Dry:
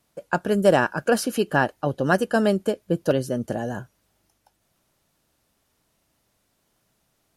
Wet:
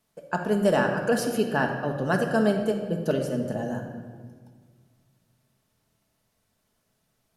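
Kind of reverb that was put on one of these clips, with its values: simulated room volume 2000 m³, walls mixed, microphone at 1.5 m; trim -5.5 dB

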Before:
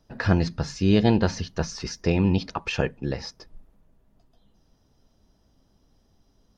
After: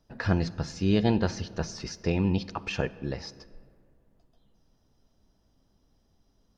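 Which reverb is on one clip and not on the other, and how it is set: algorithmic reverb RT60 2.3 s, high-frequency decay 0.5×, pre-delay 20 ms, DRR 18 dB; trim -4.5 dB

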